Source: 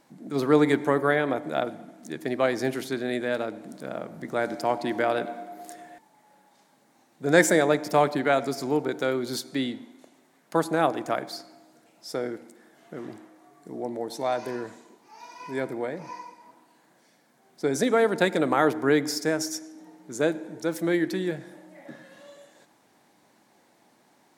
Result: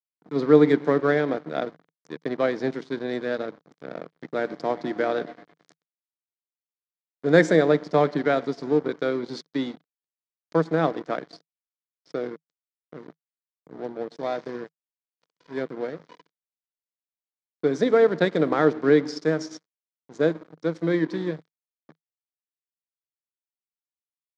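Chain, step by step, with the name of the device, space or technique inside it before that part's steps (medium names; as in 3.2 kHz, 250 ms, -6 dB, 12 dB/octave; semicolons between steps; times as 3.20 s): blown loudspeaker (crossover distortion -36.5 dBFS; cabinet simulation 140–5300 Hz, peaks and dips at 160 Hz +10 dB, 290 Hz +4 dB, 460 Hz +6 dB, 860 Hz -4 dB, 2.7 kHz -8 dB)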